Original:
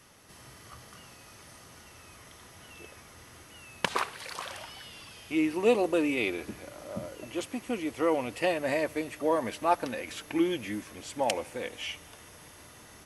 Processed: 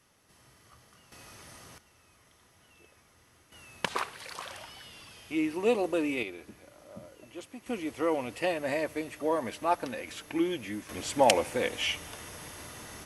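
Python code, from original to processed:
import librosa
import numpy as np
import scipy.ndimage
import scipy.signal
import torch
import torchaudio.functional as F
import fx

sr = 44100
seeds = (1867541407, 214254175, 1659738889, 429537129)

y = fx.gain(x, sr, db=fx.steps((0.0, -9.0), (1.12, 1.0), (1.78, -11.0), (3.52, -2.5), (6.23, -9.5), (7.66, -2.0), (10.89, 6.5)))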